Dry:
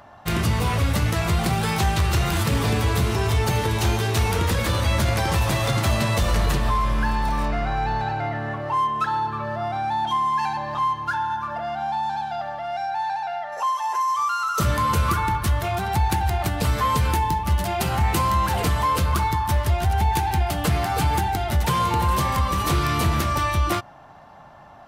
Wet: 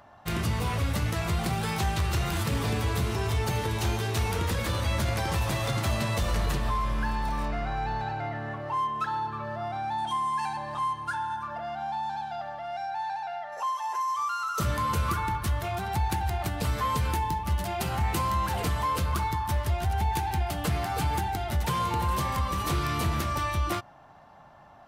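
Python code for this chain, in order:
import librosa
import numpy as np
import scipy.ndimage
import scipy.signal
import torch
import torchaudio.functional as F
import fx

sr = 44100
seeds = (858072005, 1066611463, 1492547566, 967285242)

y = fx.peak_eq(x, sr, hz=8900.0, db=14.0, octaves=0.37, at=(9.98, 11.43))
y = y * librosa.db_to_amplitude(-6.5)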